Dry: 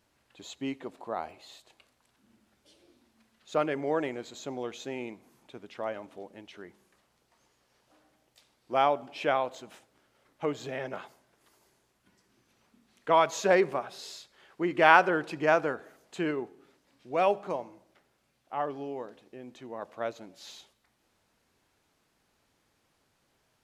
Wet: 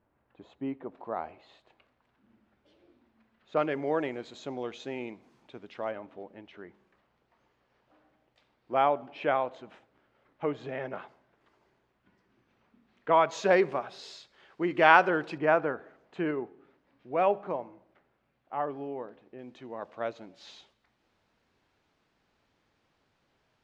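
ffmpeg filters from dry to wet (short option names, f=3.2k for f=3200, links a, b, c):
-af "asetnsamples=n=441:p=0,asendcmd='0.95 lowpass f 2200;3.57 lowpass f 4500;5.91 lowpass f 2500;13.31 lowpass f 4900;15.38 lowpass f 2200;19.39 lowpass f 4200',lowpass=1.3k"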